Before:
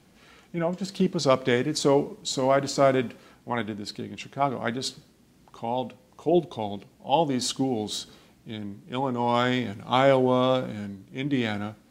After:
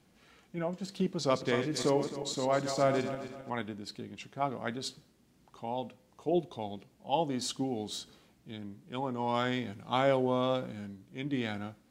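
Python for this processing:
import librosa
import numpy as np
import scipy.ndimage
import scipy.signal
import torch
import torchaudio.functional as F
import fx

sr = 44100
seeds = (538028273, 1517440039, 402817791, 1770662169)

y = fx.reverse_delay_fb(x, sr, ms=132, feedback_pct=57, wet_db=-8, at=(1.17, 3.5))
y = y * 10.0 ** (-7.5 / 20.0)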